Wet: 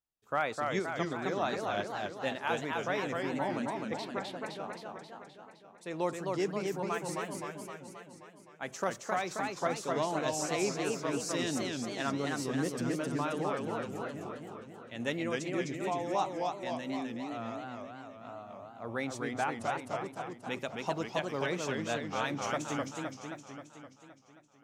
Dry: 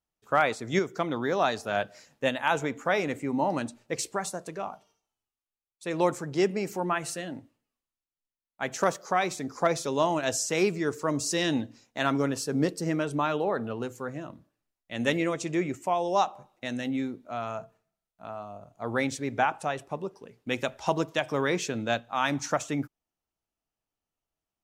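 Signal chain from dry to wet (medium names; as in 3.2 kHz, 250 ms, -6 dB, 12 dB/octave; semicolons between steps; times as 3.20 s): 3.97–4.46 s: resonant high shelf 5.2 kHz -11.5 dB, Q 3; modulated delay 262 ms, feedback 62%, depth 195 cents, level -3 dB; trim -8 dB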